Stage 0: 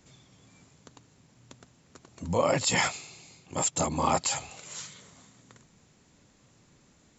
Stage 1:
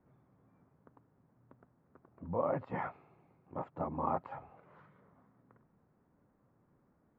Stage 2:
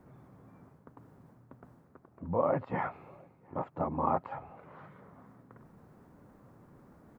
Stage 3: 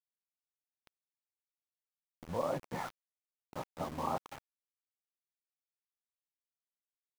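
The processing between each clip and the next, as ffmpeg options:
ffmpeg -i in.wav -af "lowpass=frequency=1400:width=0.5412,lowpass=frequency=1400:width=1.3066,lowshelf=frequency=110:gain=-5,volume=-7.5dB" out.wav
ffmpeg -i in.wav -filter_complex "[0:a]areverse,acompressor=mode=upward:threshold=-51dB:ratio=2.5,areverse,asplit=2[link_01][link_02];[link_02]adelay=699.7,volume=-28dB,highshelf=frequency=4000:gain=-15.7[link_03];[link_01][link_03]amix=inputs=2:normalize=0,volume=4.5dB" out.wav
ffmpeg -i in.wav -af "aeval=exprs='val(0)*gte(abs(val(0)),0.015)':channel_layout=same,volume=-6dB" out.wav

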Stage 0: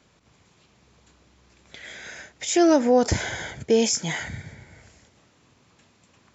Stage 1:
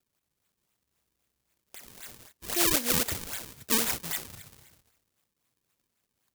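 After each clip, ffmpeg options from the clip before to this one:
ffmpeg -i in.wav -af "acrusher=samples=37:mix=1:aa=0.000001:lfo=1:lforange=59.2:lforate=3.8,agate=range=-11dB:threshold=-48dB:ratio=16:detection=peak,crystalizer=i=8.5:c=0,volume=-15.5dB" out.wav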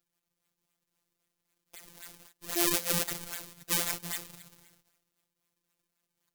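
ffmpeg -i in.wav -af "afftfilt=real='hypot(re,im)*cos(PI*b)':imag='0':win_size=1024:overlap=0.75" out.wav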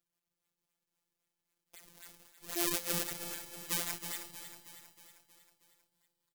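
ffmpeg -i in.wav -af "aecho=1:1:317|634|951|1268|1585|1902:0.299|0.167|0.0936|0.0524|0.0294|0.0164,volume=-5.5dB" out.wav

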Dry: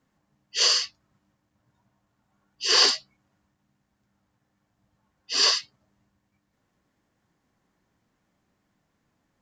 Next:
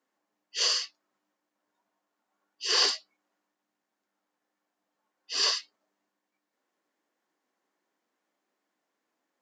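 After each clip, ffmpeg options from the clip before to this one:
ffmpeg -i in.wav -af "highpass=frequency=300:width=0.5412,highpass=frequency=300:width=1.3066,volume=-5.5dB" out.wav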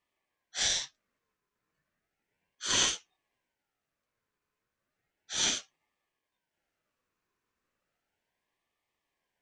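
ffmpeg -i in.wav -af "aeval=exprs='val(0)*sin(2*PI*1100*n/s+1100*0.35/0.34*sin(2*PI*0.34*n/s))':channel_layout=same" out.wav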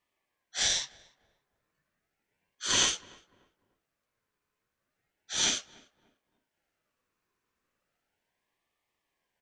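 ffmpeg -i in.wav -filter_complex "[0:a]asplit=2[link_01][link_02];[link_02]adelay=295,lowpass=frequency=1200:poles=1,volume=-20dB,asplit=2[link_03][link_04];[link_04]adelay=295,lowpass=frequency=1200:poles=1,volume=0.34,asplit=2[link_05][link_06];[link_06]adelay=295,lowpass=frequency=1200:poles=1,volume=0.34[link_07];[link_01][link_03][link_05][link_07]amix=inputs=4:normalize=0,volume=1.5dB" out.wav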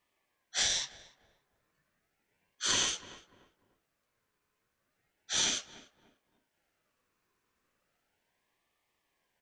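ffmpeg -i in.wav -af "acompressor=threshold=-29dB:ratio=6,volume=3dB" out.wav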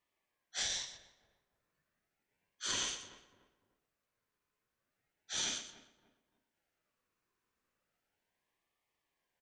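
ffmpeg -i in.wav -af "aecho=1:1:121:0.282,volume=-7dB" out.wav

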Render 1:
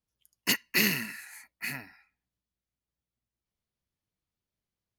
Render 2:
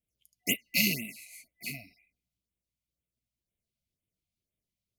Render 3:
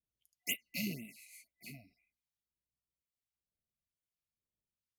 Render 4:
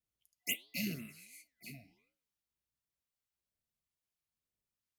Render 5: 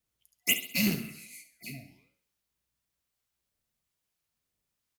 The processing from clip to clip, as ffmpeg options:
ffmpeg -i in.wav -af "afftfilt=real='re*(1-between(b*sr/4096,730,2000))':imag='im*(1-between(b*sr/4096,730,2000))':win_size=4096:overlap=0.75,afftfilt=real='re*(1-between(b*sr/1024,340*pow(5600/340,0.5+0.5*sin(2*PI*2*pts/sr))/1.41,340*pow(5600/340,0.5+0.5*sin(2*PI*2*pts/sr))*1.41))':imag='im*(1-between(b*sr/1024,340*pow(5600/340,0.5+0.5*sin(2*PI*2*pts/sr))/1.41,340*pow(5600/340,0.5+0.5*sin(2*PI*2*pts/sr))*1.41))':win_size=1024:overlap=0.75" out.wav
ffmpeg -i in.wav -filter_complex "[0:a]acrossover=split=780[link_01][link_02];[link_01]aeval=exprs='val(0)*(1-0.7/2+0.7/2*cos(2*PI*1.1*n/s))':channel_layout=same[link_03];[link_02]aeval=exprs='val(0)*(1-0.7/2-0.7/2*cos(2*PI*1.1*n/s))':channel_layout=same[link_04];[link_03][link_04]amix=inputs=2:normalize=0,volume=-6.5dB" out.wav
ffmpeg -i in.wav -af "flanger=delay=8:depth=9.2:regen=-90:speed=1.4:shape=sinusoidal,volume=5dB" out.wav
ffmpeg -i in.wav -filter_complex "[0:a]asplit=2[link_01][link_02];[link_02]acrusher=bits=5:mix=0:aa=0.000001,volume=-9dB[link_03];[link_01][link_03]amix=inputs=2:normalize=0,aecho=1:1:67|134|201|268|335:0.251|0.113|0.0509|0.0229|0.0103,volume=7.5dB" out.wav

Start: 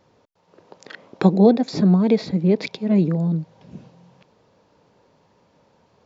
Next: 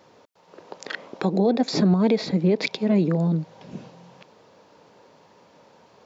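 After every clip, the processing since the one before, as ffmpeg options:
ffmpeg -i in.wav -filter_complex "[0:a]highpass=frequency=290:poles=1,asplit=2[link_01][link_02];[link_02]acompressor=threshold=-28dB:ratio=6,volume=2dB[link_03];[link_01][link_03]amix=inputs=2:normalize=0,alimiter=limit=-11dB:level=0:latency=1:release=94" out.wav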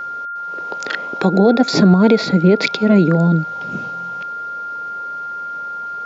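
ffmpeg -i in.wav -af "aeval=exprs='val(0)+0.0251*sin(2*PI*1400*n/s)':channel_layout=same,volume=8dB" out.wav

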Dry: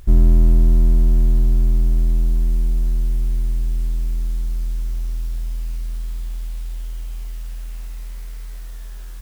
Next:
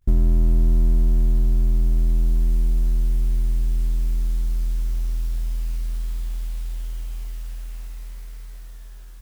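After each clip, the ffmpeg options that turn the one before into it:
ffmpeg -i in.wav -af "agate=range=-33dB:threshold=-26dB:ratio=3:detection=peak,acompressor=threshold=-15dB:ratio=2.5" out.wav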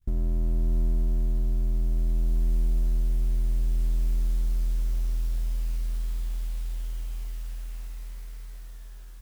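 ffmpeg -i in.wav -af "adynamicequalizer=threshold=0.00224:dfrequency=540:dqfactor=2.4:tfrequency=540:tqfactor=2.4:attack=5:release=100:ratio=0.375:range=3.5:mode=boostabove:tftype=bell,alimiter=limit=-15.5dB:level=0:latency=1:release=488,volume=-3dB" out.wav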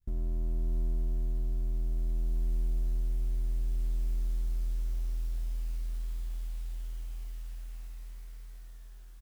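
ffmpeg -i in.wav -filter_complex "[0:a]asplit=2[link_01][link_02];[link_02]adelay=27,volume=-12.5dB[link_03];[link_01][link_03]amix=inputs=2:normalize=0,volume=-7.5dB" out.wav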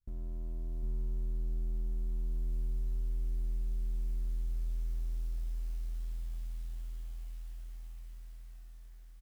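ffmpeg -i in.wav -af "aeval=exprs='0.0631*(cos(1*acos(clip(val(0)/0.0631,-1,1)))-cos(1*PI/2))+0.00178*(cos(7*acos(clip(val(0)/0.0631,-1,1)))-cos(7*PI/2))':channel_layout=same,aecho=1:1:756:0.668,volume=-7.5dB" out.wav

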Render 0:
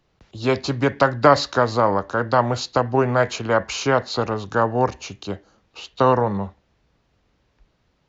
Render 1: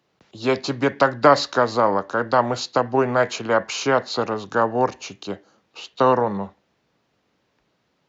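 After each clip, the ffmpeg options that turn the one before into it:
ffmpeg -i in.wav -af "highpass=170" out.wav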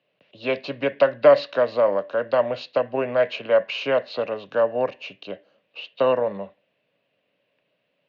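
ffmpeg -i in.wav -af "highpass=170,equalizer=frequency=220:width_type=q:width=4:gain=-5,equalizer=frequency=350:width_type=q:width=4:gain=-8,equalizer=frequency=580:width_type=q:width=4:gain=10,equalizer=frequency=850:width_type=q:width=4:gain=-9,equalizer=frequency=1300:width_type=q:width=4:gain=-8,equalizer=frequency=2700:width_type=q:width=4:gain=9,lowpass=frequency=3700:width=0.5412,lowpass=frequency=3700:width=1.3066,volume=-3.5dB" out.wav

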